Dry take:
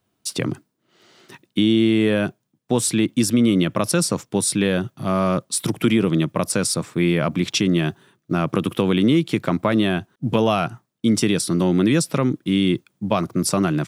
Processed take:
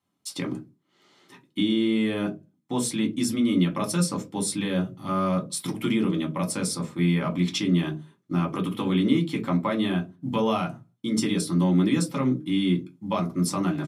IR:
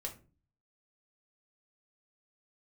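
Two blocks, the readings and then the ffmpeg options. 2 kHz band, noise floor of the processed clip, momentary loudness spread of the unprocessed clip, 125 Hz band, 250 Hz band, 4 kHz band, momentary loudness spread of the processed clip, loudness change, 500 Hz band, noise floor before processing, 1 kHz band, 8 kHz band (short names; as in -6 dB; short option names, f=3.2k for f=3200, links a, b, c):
-7.5 dB, -70 dBFS, 8 LU, -4.5 dB, -4.5 dB, -6.0 dB, 9 LU, -5.5 dB, -8.0 dB, -73 dBFS, -4.5 dB, -7.5 dB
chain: -filter_complex "[0:a]highpass=110[a];[1:a]atrim=start_sample=2205,asetrate=83790,aresample=44100[b];[a][b]afir=irnorm=-1:irlink=0,aresample=32000,aresample=44100"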